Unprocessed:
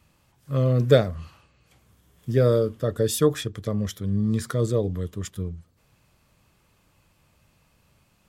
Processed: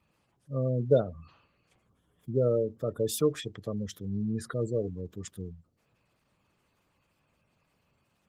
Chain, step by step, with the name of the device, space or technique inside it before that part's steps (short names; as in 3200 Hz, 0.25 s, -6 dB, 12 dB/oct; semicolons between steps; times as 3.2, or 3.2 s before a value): noise-suppressed video call (HPF 160 Hz 6 dB/oct; spectral gate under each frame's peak -20 dB strong; gain -5 dB; Opus 20 kbps 48000 Hz)